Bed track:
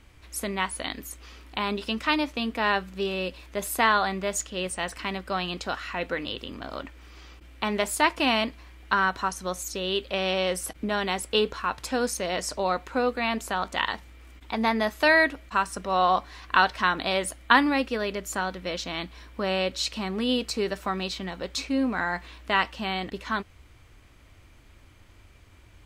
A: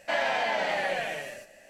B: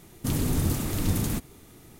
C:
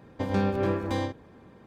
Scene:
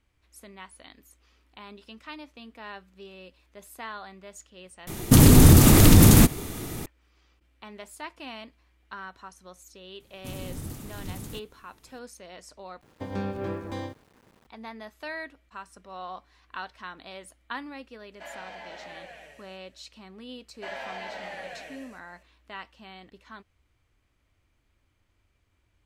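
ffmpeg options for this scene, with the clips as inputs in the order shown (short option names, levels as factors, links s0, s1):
-filter_complex "[2:a]asplit=2[s0][s1];[1:a]asplit=2[s2][s3];[0:a]volume=0.141[s4];[s0]alimiter=level_in=8.41:limit=0.891:release=50:level=0:latency=1[s5];[3:a]aeval=exprs='val(0)*gte(abs(val(0)),0.00355)':c=same[s6];[s4]asplit=3[s7][s8][s9];[s7]atrim=end=4.874[s10];[s5]atrim=end=1.99,asetpts=PTS-STARTPTS,volume=0.708[s11];[s8]atrim=start=6.856:end=12.814[s12];[s6]atrim=end=1.66,asetpts=PTS-STARTPTS,volume=0.501[s13];[s9]atrim=start=14.466[s14];[s1]atrim=end=1.99,asetpts=PTS-STARTPTS,volume=0.251,afade=t=in:d=0.004:c=hsin,afade=t=out:st=1.986:d=0.004:c=hsin,adelay=10000[s15];[s2]atrim=end=1.69,asetpts=PTS-STARTPTS,volume=0.168,afade=t=in:d=0.004:c=hsin,afade=t=out:st=1.686:d=0.004:c=hsin,adelay=799092S[s16];[s3]atrim=end=1.69,asetpts=PTS-STARTPTS,volume=0.299,afade=t=in:d=0.004:c=hsin,afade=t=out:st=1.686:d=0.004:c=hsin,adelay=20540[s17];[s10][s11]acrossfade=d=0.004:c1=hsin:c2=hsin[s18];[s18][s12]acrossfade=d=0.004:c1=hsin:c2=hsin[s19];[s19][s13]acrossfade=d=0.004:c1=hsin:c2=hsin[s20];[s20][s14]acrossfade=d=0.004:c1=hsin:c2=hsin[s21];[s21][s15][s16][s17]amix=inputs=4:normalize=0"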